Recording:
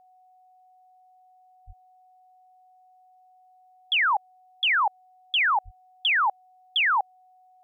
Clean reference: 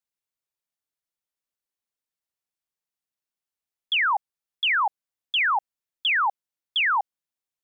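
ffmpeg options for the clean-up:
-filter_complex "[0:a]bandreject=f=740:w=30,asplit=3[a][b][c];[a]afade=t=out:st=1.66:d=0.02[d];[b]highpass=f=140:w=0.5412,highpass=f=140:w=1.3066,afade=t=in:st=1.66:d=0.02,afade=t=out:st=1.78:d=0.02[e];[c]afade=t=in:st=1.78:d=0.02[f];[d][e][f]amix=inputs=3:normalize=0,asplit=3[g][h][i];[g]afade=t=out:st=5.64:d=0.02[j];[h]highpass=f=140:w=0.5412,highpass=f=140:w=1.3066,afade=t=in:st=5.64:d=0.02,afade=t=out:st=5.76:d=0.02[k];[i]afade=t=in:st=5.76:d=0.02[l];[j][k][l]amix=inputs=3:normalize=0"

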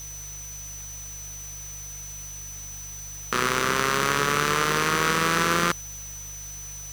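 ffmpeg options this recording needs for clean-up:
-af "bandreject=f=49.9:t=h:w=4,bandreject=f=99.8:t=h:w=4,bandreject=f=149.7:t=h:w=4,bandreject=f=6k:w=30,afftdn=nr=30:nf=-38"

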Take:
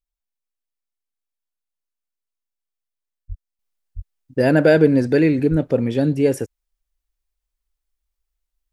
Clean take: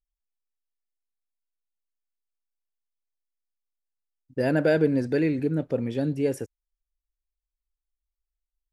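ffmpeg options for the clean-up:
-filter_complex "[0:a]asplit=3[a][b][c];[a]afade=t=out:st=3.28:d=0.02[d];[b]highpass=f=140:w=0.5412,highpass=f=140:w=1.3066,afade=t=in:st=3.28:d=0.02,afade=t=out:st=3.4:d=0.02[e];[c]afade=t=in:st=3.4:d=0.02[f];[d][e][f]amix=inputs=3:normalize=0,asplit=3[g][h][i];[g]afade=t=out:st=3.95:d=0.02[j];[h]highpass=f=140:w=0.5412,highpass=f=140:w=1.3066,afade=t=in:st=3.95:d=0.02,afade=t=out:st=4.07:d=0.02[k];[i]afade=t=in:st=4.07:d=0.02[l];[j][k][l]amix=inputs=3:normalize=0,asplit=3[m][n][o];[m]afade=t=out:st=5.5:d=0.02[p];[n]highpass=f=140:w=0.5412,highpass=f=140:w=1.3066,afade=t=in:st=5.5:d=0.02,afade=t=out:st=5.62:d=0.02[q];[o]afade=t=in:st=5.62:d=0.02[r];[p][q][r]amix=inputs=3:normalize=0,asetnsamples=n=441:p=0,asendcmd='3.59 volume volume -8dB',volume=0dB"

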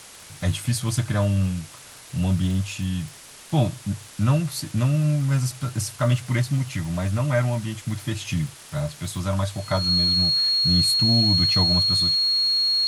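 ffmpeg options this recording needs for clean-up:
-af "adeclick=t=4,bandreject=f=4.3k:w=30,afwtdn=0.0079"

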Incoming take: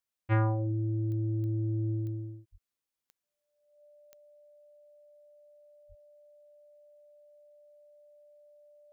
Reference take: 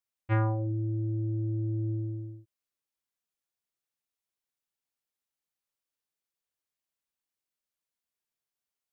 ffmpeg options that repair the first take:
-filter_complex "[0:a]adeclick=t=4,bandreject=f=590:w=30,asplit=3[a][b][c];[a]afade=t=out:st=2.51:d=0.02[d];[b]highpass=f=140:w=0.5412,highpass=f=140:w=1.3066,afade=t=in:st=2.51:d=0.02,afade=t=out:st=2.63:d=0.02[e];[c]afade=t=in:st=2.63:d=0.02[f];[d][e][f]amix=inputs=3:normalize=0,asplit=3[g][h][i];[g]afade=t=out:st=5.88:d=0.02[j];[h]highpass=f=140:w=0.5412,highpass=f=140:w=1.3066,afade=t=in:st=5.88:d=0.02,afade=t=out:st=6:d=0.02[k];[i]afade=t=in:st=6:d=0.02[l];[j][k][l]amix=inputs=3:normalize=0"

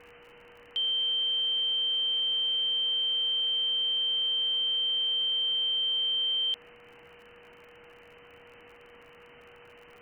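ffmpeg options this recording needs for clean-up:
-af "adeclick=t=4,bandreject=f=480:w=30,afwtdn=0.0045"

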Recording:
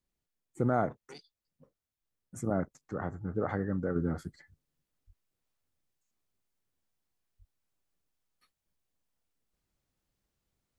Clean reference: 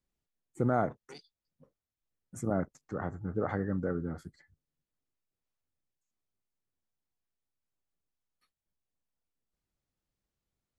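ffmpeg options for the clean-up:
-filter_complex "[0:a]asplit=3[a][b][c];[a]afade=t=out:st=5.06:d=0.02[d];[b]highpass=f=140:w=0.5412,highpass=f=140:w=1.3066,afade=t=in:st=5.06:d=0.02,afade=t=out:st=5.18:d=0.02[e];[c]afade=t=in:st=5.18:d=0.02[f];[d][e][f]amix=inputs=3:normalize=0,asplit=3[g][h][i];[g]afade=t=out:st=7.38:d=0.02[j];[h]highpass=f=140:w=0.5412,highpass=f=140:w=1.3066,afade=t=in:st=7.38:d=0.02,afade=t=out:st=7.5:d=0.02[k];[i]afade=t=in:st=7.5:d=0.02[l];[j][k][l]amix=inputs=3:normalize=0,asetnsamples=n=441:p=0,asendcmd='3.96 volume volume -5dB',volume=0dB"

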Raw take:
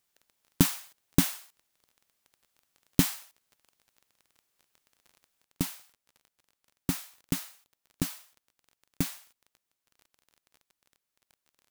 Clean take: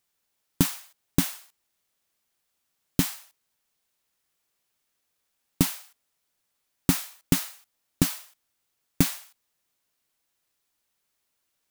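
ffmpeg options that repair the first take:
-af "adeclick=t=4,asetnsamples=n=441:p=0,asendcmd='5.44 volume volume 8dB',volume=0dB"

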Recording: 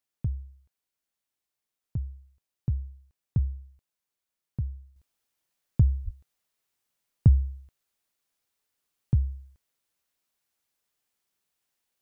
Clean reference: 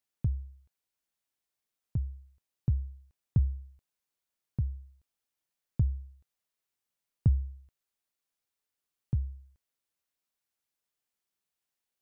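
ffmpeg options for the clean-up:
-filter_complex "[0:a]asplit=3[a][b][c];[a]afade=t=out:st=6.04:d=0.02[d];[b]highpass=f=140:w=0.5412,highpass=f=140:w=1.3066,afade=t=in:st=6.04:d=0.02,afade=t=out:st=6.16:d=0.02[e];[c]afade=t=in:st=6.16:d=0.02[f];[d][e][f]amix=inputs=3:normalize=0,asetnsamples=n=441:p=0,asendcmd='4.96 volume volume -6.5dB',volume=0dB"

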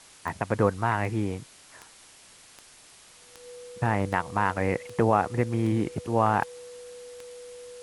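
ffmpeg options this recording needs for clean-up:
-af "adeclick=t=4,bandreject=f=490:w=30,afwtdn=0.0032"

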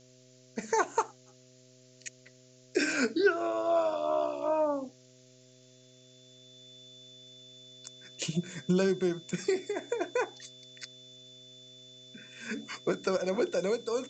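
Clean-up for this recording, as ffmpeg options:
-af "bandreject=f=127.1:t=h:w=4,bandreject=f=254.2:t=h:w=4,bandreject=f=381.3:t=h:w=4,bandreject=f=508.4:t=h:w=4,bandreject=f=635.5:t=h:w=4,bandreject=f=3.5k:w=30,afftdn=nr=18:nf=-59"

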